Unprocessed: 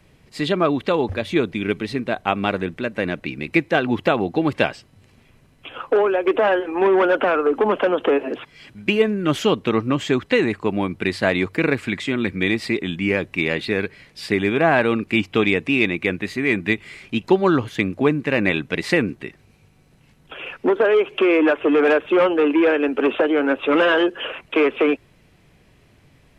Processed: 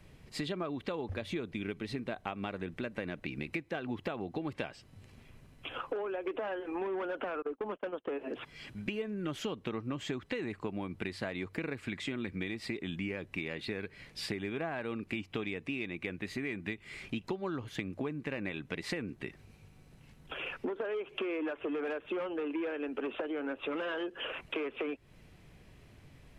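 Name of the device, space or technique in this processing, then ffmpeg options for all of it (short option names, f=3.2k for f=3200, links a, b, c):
serial compression, peaks first: -filter_complex "[0:a]acompressor=threshold=-28dB:ratio=4,acompressor=threshold=-34dB:ratio=1.5,asettb=1/sr,asplit=3[a][b][c];[a]atrim=end=7.424[d];[b]atrim=start=7.42:end=8.11,asetpts=PTS-STARTPTS,afade=t=in:d=0.004:c=qsin,afade=t=out:st=0.686:d=0.004:c=qsin,agate=range=-34dB:threshold=-32dB:ratio=16:detection=peak[e];[c]atrim=start=8.106[f];[d][e]acrossfade=d=0.004:c1=hsin:c2=qsin[g];[g][f]acrossfade=d=0.004:c1=qsin:c2=hsin,lowshelf=f=99:g=5.5,volume=-4.5dB"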